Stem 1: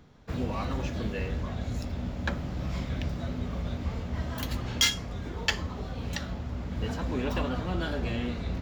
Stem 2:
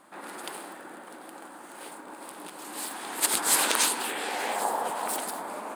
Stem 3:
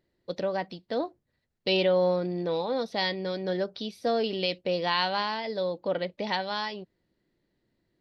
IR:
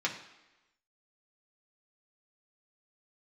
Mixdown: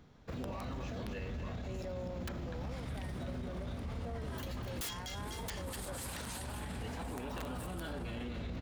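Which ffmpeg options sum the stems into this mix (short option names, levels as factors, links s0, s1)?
-filter_complex "[0:a]volume=0.631,asplit=2[s0][s1];[s1]volume=0.316[s2];[1:a]adelay=2500,volume=0.2,asplit=2[s3][s4];[s4]volume=0.158[s5];[2:a]lowpass=f=2000:w=0.5412,lowpass=f=2000:w=1.3066,volume=0.168[s6];[s2][s5]amix=inputs=2:normalize=0,aecho=0:1:249|498|747|996|1245|1494:1|0.42|0.176|0.0741|0.0311|0.0131[s7];[s0][s3][s6][s7]amix=inputs=4:normalize=0,aeval=exprs='(mod(14.1*val(0)+1,2)-1)/14.1':c=same,alimiter=level_in=2.99:limit=0.0631:level=0:latency=1:release=27,volume=0.335"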